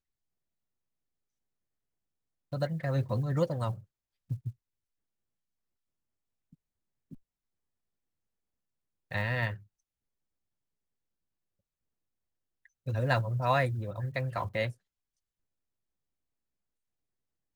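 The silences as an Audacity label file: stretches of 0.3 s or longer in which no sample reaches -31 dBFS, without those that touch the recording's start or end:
3.720000	4.310000	silence
4.490000	9.120000	silence
9.530000	12.880000	silence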